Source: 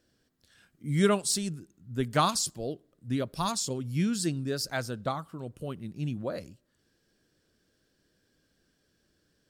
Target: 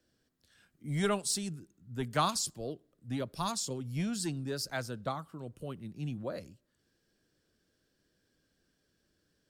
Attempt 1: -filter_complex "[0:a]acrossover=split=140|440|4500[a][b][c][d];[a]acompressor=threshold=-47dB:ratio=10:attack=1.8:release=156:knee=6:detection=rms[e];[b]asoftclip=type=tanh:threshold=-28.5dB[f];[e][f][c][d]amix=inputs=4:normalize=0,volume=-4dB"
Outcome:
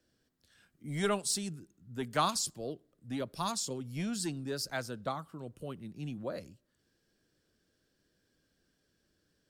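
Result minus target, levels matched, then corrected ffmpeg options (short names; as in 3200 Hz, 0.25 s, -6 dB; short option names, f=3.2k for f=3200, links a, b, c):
compressor: peak gain reduction +14.5 dB
-filter_complex "[0:a]acrossover=split=140|440|4500[a][b][c][d];[b]asoftclip=type=tanh:threshold=-28.5dB[e];[a][e][c][d]amix=inputs=4:normalize=0,volume=-4dB"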